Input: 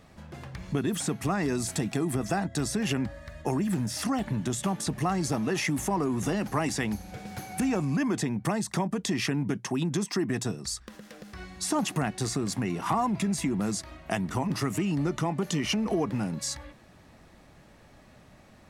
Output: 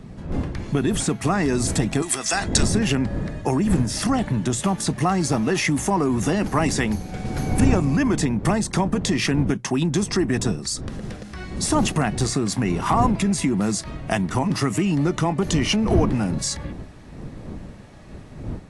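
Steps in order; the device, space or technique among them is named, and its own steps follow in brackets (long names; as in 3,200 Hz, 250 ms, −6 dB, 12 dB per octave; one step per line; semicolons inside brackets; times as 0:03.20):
0:02.02–0:02.63: meter weighting curve ITU-R 468
smartphone video outdoors (wind on the microphone 200 Hz −36 dBFS; automatic gain control gain up to 3.5 dB; level +3.5 dB; AAC 64 kbit/s 24,000 Hz)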